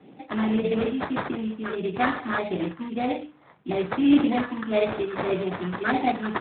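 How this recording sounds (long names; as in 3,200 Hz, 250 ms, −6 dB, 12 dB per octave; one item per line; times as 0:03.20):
a quantiser's noise floor 10 bits, dither none
phaser sweep stages 4, 1.7 Hz, lowest notch 580–1,700 Hz
aliases and images of a low sample rate 3,000 Hz, jitter 20%
AMR narrowband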